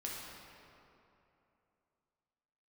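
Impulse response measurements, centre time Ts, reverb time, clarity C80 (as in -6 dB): 0.137 s, 2.9 s, 0.5 dB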